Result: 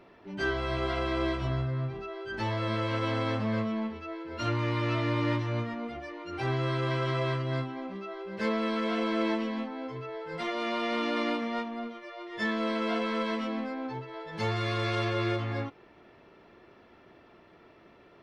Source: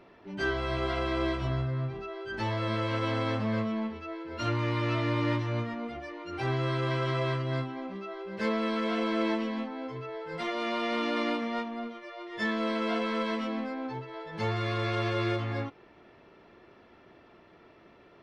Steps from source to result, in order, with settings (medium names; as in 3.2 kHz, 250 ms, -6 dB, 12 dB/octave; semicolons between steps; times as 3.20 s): 14.28–15.05 s: treble shelf 4 kHz +6 dB